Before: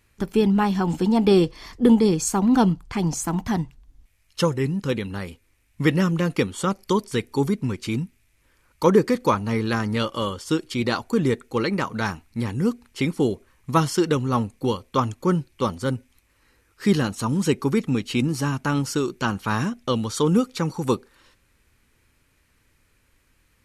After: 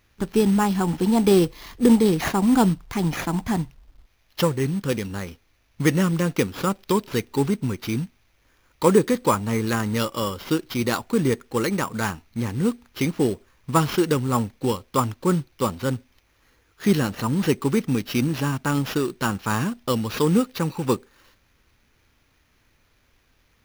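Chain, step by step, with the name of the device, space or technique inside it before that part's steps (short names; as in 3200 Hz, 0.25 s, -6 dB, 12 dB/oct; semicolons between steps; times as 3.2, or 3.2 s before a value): early companding sampler (sample-rate reducer 8400 Hz, jitter 0%; companded quantiser 6-bit)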